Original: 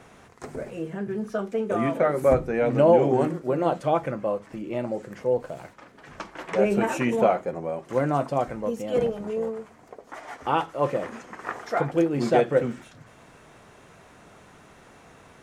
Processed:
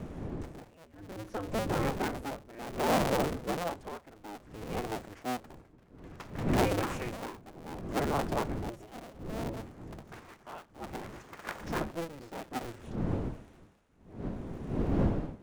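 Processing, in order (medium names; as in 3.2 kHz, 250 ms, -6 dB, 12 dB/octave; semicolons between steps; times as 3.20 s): cycle switcher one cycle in 2, inverted; wind noise 280 Hz -29 dBFS; tremolo 0.61 Hz, depth 86%; trim -7 dB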